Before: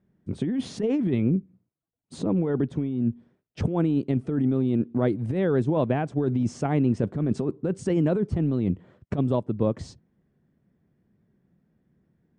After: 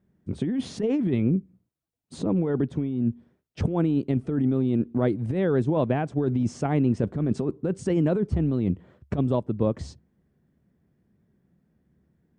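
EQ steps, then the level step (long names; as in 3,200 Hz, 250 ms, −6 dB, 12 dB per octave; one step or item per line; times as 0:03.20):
parametric band 70 Hz +9.5 dB 0.22 octaves
0.0 dB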